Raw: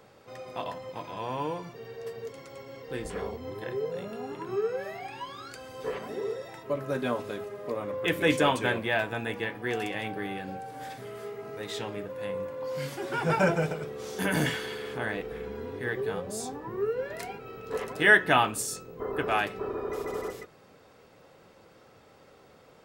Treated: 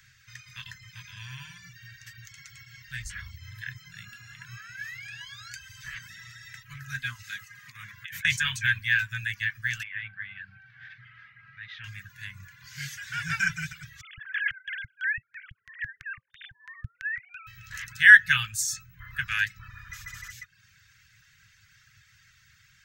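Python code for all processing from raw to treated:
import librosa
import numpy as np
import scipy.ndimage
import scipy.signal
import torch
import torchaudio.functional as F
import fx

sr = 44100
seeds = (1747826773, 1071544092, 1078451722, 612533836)

y = fx.chain(x, sr, fx.highpass(hz=250.0, slope=6),
    fx.peak_eq(hz=350.0, db=12.5, octaves=0.22),
    fx.over_compress(threshold_db=-33.0, ratio=-1.0), at=(7.23, 8.25))
y = fx.chain(y, sr, fx.gaussian_blur(sigma=3.1),
    fx.low_shelf(hz=210.0, db=-10.5), at=(9.83, 11.84))
y = fx.chain(y, sr, fx.sine_speech(),
    fx.filter_lfo_bandpass(shape='square', hz=3.0, low_hz=200.0, high_hz=1800.0, q=1.1),
    fx.env_flatten(amount_pct=50), at=(14.01, 17.47))
y = scipy.signal.sosfilt(scipy.signal.ellip(3, 1.0, 60, [120.0, 1800.0], 'bandstop', fs=sr, output='sos'), y)
y = fx.dereverb_blind(y, sr, rt60_s=0.52)
y = fx.graphic_eq_31(y, sr, hz=(500, 1600, 6300, 10000), db=(-3, 8, 8, -8))
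y = y * librosa.db_to_amplitude(4.5)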